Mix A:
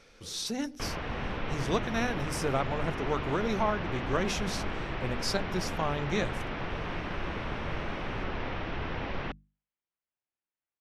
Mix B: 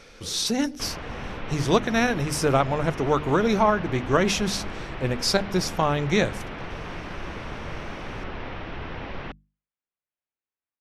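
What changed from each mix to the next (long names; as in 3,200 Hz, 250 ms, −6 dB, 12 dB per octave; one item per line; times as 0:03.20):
speech +9.0 dB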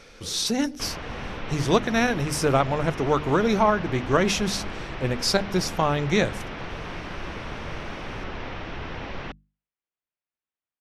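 background: remove high-frequency loss of the air 110 metres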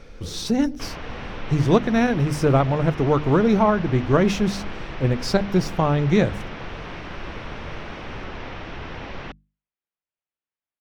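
speech: add spectral tilt −2.5 dB per octave
master: remove linear-phase brick-wall low-pass 13,000 Hz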